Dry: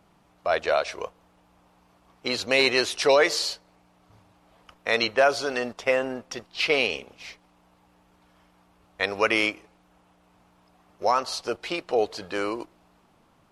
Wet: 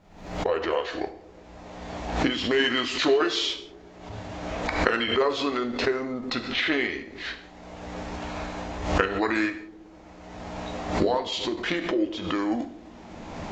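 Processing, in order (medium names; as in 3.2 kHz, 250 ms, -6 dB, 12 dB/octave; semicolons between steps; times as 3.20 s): recorder AGC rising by 27 dB/s; formant shift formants -5 st; resampled via 16 kHz; added noise brown -62 dBFS; on a send: feedback echo behind a low-pass 123 ms, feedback 71%, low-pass 420 Hz, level -17.5 dB; on the sum: gated-style reverb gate 210 ms falling, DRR 7 dB; swell ahead of each attack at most 78 dB/s; trim -3.5 dB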